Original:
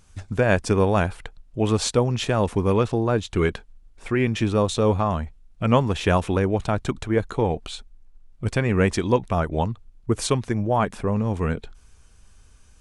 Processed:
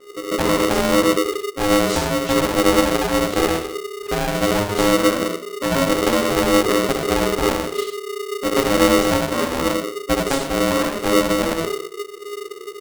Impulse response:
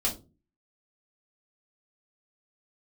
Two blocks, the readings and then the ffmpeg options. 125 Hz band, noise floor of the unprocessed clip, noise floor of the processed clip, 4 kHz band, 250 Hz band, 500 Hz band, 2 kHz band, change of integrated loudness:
-6.5 dB, -53 dBFS, -35 dBFS, +9.5 dB, +5.0 dB, +5.0 dB, +6.5 dB, +4.0 dB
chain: -filter_complex "[0:a]lowshelf=f=150:g=11.5,flanger=delay=15.5:depth=5.4:speed=1.3,acrossover=split=2000[a][b];[b]adelay=80[c];[a][c]amix=inputs=2:normalize=0,asplit=2[d][e];[1:a]atrim=start_sample=2205,adelay=56[f];[e][f]afir=irnorm=-1:irlink=0,volume=-10.5dB[g];[d][g]amix=inputs=2:normalize=0,acrossover=split=170|3000[h][i][j];[i]acompressor=threshold=-21dB:ratio=6[k];[h][k][j]amix=inputs=3:normalize=0,aeval=exprs='val(0)*sgn(sin(2*PI*410*n/s))':c=same"

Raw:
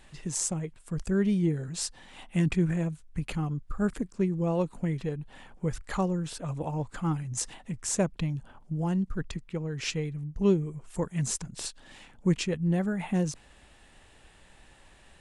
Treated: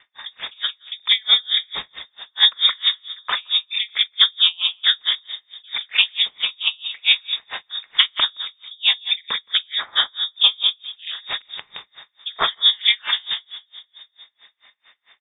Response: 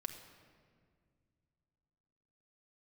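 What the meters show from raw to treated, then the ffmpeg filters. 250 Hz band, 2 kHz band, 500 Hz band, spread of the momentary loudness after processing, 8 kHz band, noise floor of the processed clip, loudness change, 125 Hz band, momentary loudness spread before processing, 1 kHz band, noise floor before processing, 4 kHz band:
under -25 dB, +17.0 dB, -12.0 dB, 18 LU, under -40 dB, -69 dBFS, +12.0 dB, under -30 dB, 10 LU, +7.5 dB, -57 dBFS, +28.5 dB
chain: -filter_complex "[0:a]agate=range=-14dB:threshold=-43dB:ratio=16:detection=peak,equalizer=f=1.7k:t=o:w=1.7:g=11.5,aeval=exprs='val(0)*sin(2*PI*120*n/s)':c=same,aecho=1:1:42|48|169:0.2|0.141|0.282,asplit=2[a][b];[1:a]atrim=start_sample=2205[c];[b][c]afir=irnorm=-1:irlink=0,volume=-3.5dB[d];[a][d]amix=inputs=2:normalize=0,lowpass=f=3.1k:t=q:w=0.5098,lowpass=f=3.1k:t=q:w=0.6013,lowpass=f=3.1k:t=q:w=0.9,lowpass=f=3.1k:t=q:w=2.563,afreqshift=-3700,alimiter=level_in=13dB:limit=-1dB:release=50:level=0:latency=1,aeval=exprs='val(0)*pow(10,-34*(0.5-0.5*cos(2*PI*4.5*n/s))/20)':c=same"

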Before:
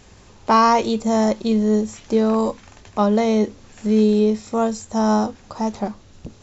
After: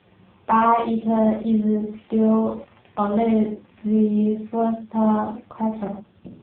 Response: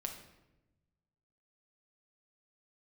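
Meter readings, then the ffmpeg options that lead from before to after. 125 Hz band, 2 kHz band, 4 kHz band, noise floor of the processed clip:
-1.5 dB, -5.0 dB, under -10 dB, -56 dBFS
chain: -filter_complex "[1:a]atrim=start_sample=2205,atrim=end_sample=6174[a];[0:a][a]afir=irnorm=-1:irlink=0" -ar 8000 -c:a libopencore_amrnb -b:a 5150

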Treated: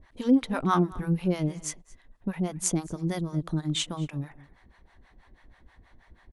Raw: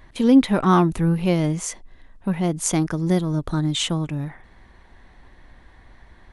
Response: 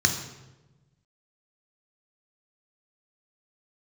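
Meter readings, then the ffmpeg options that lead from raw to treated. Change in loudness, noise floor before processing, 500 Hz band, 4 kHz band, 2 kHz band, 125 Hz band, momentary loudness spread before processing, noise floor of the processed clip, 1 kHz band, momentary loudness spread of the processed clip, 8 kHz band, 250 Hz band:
-7.5 dB, -51 dBFS, -8.5 dB, -6.5 dB, -7.0 dB, -7.5 dB, 12 LU, -61 dBFS, -7.0 dB, 13 LU, -5.0 dB, -8.0 dB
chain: -filter_complex "[0:a]acrossover=split=560[a][b];[a]aeval=exprs='val(0)*(1-1/2+1/2*cos(2*PI*6.2*n/s))':c=same[c];[b]aeval=exprs='val(0)*(1-1/2-1/2*cos(2*PI*6.2*n/s))':c=same[d];[c][d]amix=inputs=2:normalize=0,asplit=2[e][f];[f]adelay=221.6,volume=-20dB,highshelf=f=4k:g=-4.99[g];[e][g]amix=inputs=2:normalize=0,volume=-3dB"

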